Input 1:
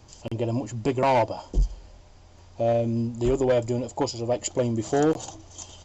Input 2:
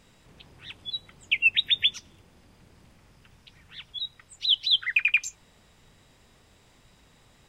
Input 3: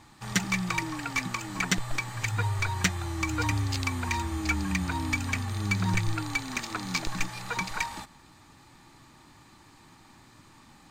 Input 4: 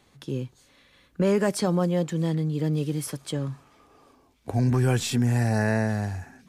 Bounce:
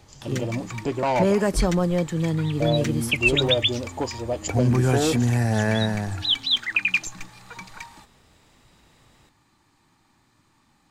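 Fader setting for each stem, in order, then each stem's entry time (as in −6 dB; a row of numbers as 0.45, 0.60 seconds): −2.0, +0.5, −8.5, +1.5 decibels; 0.00, 1.80, 0.00, 0.00 seconds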